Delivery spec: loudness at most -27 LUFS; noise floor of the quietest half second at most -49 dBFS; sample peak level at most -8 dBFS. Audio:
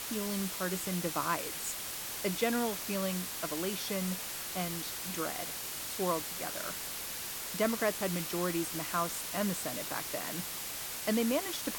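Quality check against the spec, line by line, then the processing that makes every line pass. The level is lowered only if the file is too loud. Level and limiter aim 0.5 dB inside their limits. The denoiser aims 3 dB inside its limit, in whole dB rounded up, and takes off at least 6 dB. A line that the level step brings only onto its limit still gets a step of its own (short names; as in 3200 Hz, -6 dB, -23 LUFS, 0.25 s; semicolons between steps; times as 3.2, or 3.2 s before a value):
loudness -34.0 LUFS: OK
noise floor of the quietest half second -40 dBFS: fail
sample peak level -17.0 dBFS: OK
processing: denoiser 12 dB, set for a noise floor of -40 dBFS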